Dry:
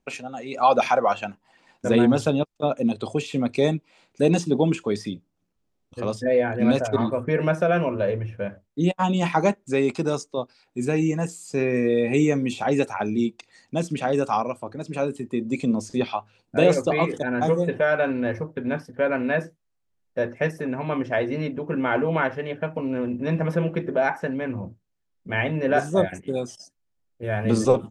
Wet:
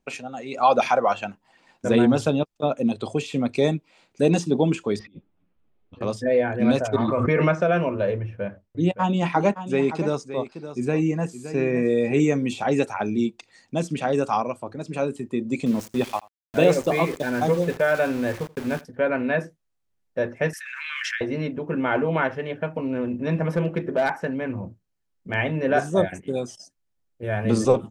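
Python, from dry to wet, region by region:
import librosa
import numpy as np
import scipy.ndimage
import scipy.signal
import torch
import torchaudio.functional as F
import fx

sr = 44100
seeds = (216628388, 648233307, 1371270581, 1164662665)

y = fx.chain(x, sr, fx.lowpass(hz=3200.0, slope=24),
    fx.over_compress(threshold_db=-39.0, ratio=-0.5),
    fx.ensemble(), at=(4.99, 6.01))
y = fx.chain(y, sr, fx.steep_lowpass(hz=7500.0, slope=48),
    fx.small_body(hz=(1200.0, 2100.0), ring_ms=20, db=10),
    fx.pre_swell(db_per_s=27.0), at=(7.08, 7.62))
y = fx.chain(y, sr, fx.high_shelf(hz=4800.0, db=-8.5),
    fx.notch(hz=7300.0, q=21.0),
    fx.echo_single(ms=568, db=-12.0), at=(8.18, 12.2))
y = fx.chain(y, sr, fx.sample_gate(floor_db=-33.5),
    fx.echo_single(ms=83, db=-22.5), at=(15.66, 18.85))
y = fx.chain(y, sr, fx.steep_highpass(hz=1500.0, slope=48),
    fx.pre_swell(db_per_s=20.0), at=(20.53, 21.21))
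y = fx.chain(y, sr, fx.notch(hz=3500.0, q=22.0),
    fx.overload_stage(gain_db=15.5), at=(23.47, 25.34))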